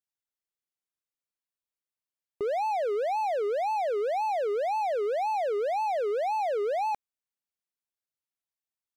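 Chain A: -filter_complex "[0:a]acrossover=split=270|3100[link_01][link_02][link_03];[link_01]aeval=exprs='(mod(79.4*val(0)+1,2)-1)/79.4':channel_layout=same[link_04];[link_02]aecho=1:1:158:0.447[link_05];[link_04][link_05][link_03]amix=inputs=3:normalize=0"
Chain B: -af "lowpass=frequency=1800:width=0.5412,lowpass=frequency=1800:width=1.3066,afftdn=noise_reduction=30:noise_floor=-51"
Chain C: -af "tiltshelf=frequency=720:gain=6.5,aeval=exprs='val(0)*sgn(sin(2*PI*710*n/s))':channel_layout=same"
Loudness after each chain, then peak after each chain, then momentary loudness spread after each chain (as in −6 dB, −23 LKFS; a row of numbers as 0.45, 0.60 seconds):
−28.0, −29.0, −26.5 LKFS; −21.5, −24.0, −21.0 dBFS; 2, 2, 2 LU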